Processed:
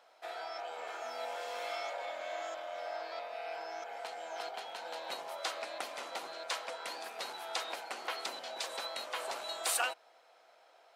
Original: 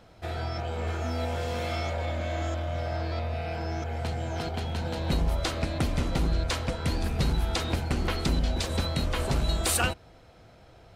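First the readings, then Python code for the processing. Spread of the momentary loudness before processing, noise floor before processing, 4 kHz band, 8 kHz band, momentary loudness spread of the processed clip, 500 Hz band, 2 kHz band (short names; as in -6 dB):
5 LU, -54 dBFS, -6.0 dB, -6.0 dB, 6 LU, -7.5 dB, -5.5 dB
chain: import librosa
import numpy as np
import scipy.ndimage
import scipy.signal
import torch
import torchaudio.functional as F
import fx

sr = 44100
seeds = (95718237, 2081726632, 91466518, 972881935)

y = fx.ladder_highpass(x, sr, hz=530.0, resonance_pct=25)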